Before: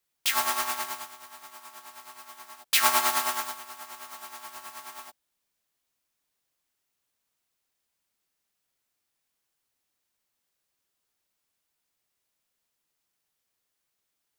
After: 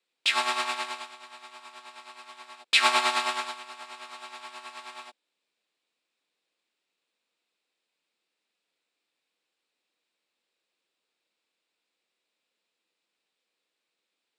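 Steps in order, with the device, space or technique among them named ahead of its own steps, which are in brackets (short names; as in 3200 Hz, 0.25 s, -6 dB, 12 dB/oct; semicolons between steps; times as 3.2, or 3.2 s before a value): television speaker (speaker cabinet 190–7700 Hz, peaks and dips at 330 Hz +4 dB, 490 Hz +7 dB, 2500 Hz +7 dB, 3800 Hz +6 dB, 6200 Hz -9 dB)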